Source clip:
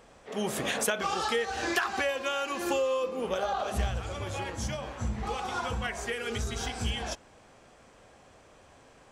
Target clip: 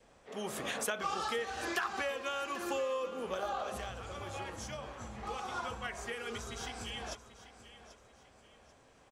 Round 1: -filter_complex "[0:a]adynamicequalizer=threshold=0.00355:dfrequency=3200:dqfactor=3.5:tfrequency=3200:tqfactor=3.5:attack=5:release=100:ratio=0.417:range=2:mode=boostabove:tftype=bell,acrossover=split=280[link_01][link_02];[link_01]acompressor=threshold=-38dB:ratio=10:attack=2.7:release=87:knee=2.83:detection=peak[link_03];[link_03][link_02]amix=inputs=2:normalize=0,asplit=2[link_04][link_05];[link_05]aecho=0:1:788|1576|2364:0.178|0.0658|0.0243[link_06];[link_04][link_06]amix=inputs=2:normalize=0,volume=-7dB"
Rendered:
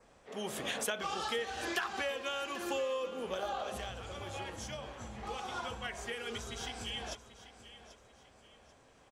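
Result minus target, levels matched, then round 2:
4,000 Hz band +3.0 dB
-filter_complex "[0:a]adynamicequalizer=threshold=0.00355:dfrequency=1200:dqfactor=3.5:tfrequency=1200:tqfactor=3.5:attack=5:release=100:ratio=0.417:range=2:mode=boostabove:tftype=bell,acrossover=split=280[link_01][link_02];[link_01]acompressor=threshold=-38dB:ratio=10:attack=2.7:release=87:knee=2.83:detection=peak[link_03];[link_03][link_02]amix=inputs=2:normalize=0,asplit=2[link_04][link_05];[link_05]aecho=0:1:788|1576|2364:0.178|0.0658|0.0243[link_06];[link_04][link_06]amix=inputs=2:normalize=0,volume=-7dB"

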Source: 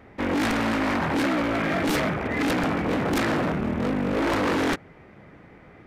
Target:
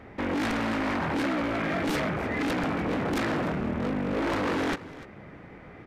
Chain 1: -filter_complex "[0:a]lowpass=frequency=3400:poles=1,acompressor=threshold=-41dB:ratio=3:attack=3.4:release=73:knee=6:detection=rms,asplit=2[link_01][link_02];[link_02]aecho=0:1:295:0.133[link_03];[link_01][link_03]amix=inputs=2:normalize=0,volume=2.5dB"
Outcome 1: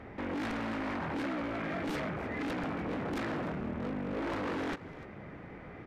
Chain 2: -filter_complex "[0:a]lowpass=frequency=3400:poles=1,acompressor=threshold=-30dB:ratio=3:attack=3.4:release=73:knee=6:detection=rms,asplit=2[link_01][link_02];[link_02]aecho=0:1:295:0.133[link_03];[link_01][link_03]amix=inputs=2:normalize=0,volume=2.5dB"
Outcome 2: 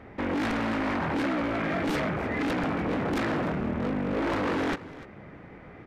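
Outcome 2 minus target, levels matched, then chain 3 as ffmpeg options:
8,000 Hz band −4.0 dB
-filter_complex "[0:a]lowpass=frequency=7300:poles=1,acompressor=threshold=-30dB:ratio=3:attack=3.4:release=73:knee=6:detection=rms,asplit=2[link_01][link_02];[link_02]aecho=0:1:295:0.133[link_03];[link_01][link_03]amix=inputs=2:normalize=0,volume=2.5dB"

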